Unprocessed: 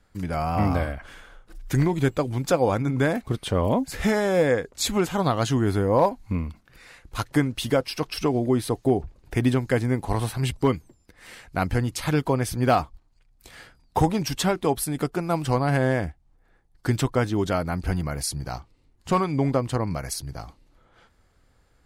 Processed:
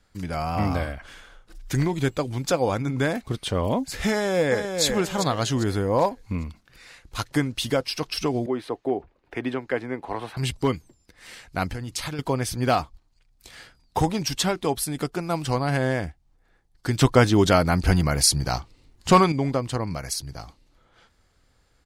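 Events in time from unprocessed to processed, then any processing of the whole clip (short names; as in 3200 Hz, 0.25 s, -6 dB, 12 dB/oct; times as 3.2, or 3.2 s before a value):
4.11–4.83 echo throw 0.4 s, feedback 35%, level -6 dB
8.46–10.37 three-band isolator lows -16 dB, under 260 Hz, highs -19 dB, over 2900 Hz
11.71–12.19 compressor, threshold -26 dBFS
17.01–19.32 gain +8 dB
whole clip: bell 4900 Hz +6 dB 2 oct; gain -2 dB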